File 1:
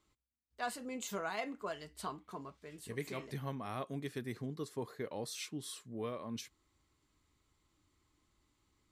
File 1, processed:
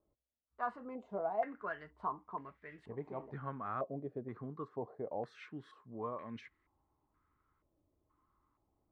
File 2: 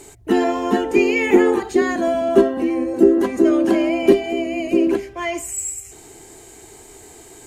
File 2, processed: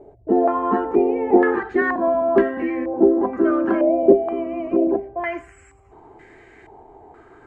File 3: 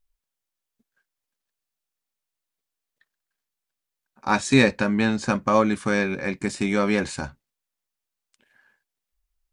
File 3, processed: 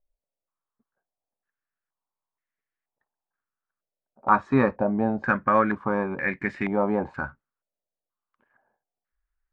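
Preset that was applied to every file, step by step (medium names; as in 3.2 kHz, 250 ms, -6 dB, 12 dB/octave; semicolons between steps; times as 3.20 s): step-sequenced low-pass 2.1 Hz 610–1900 Hz; trim -4 dB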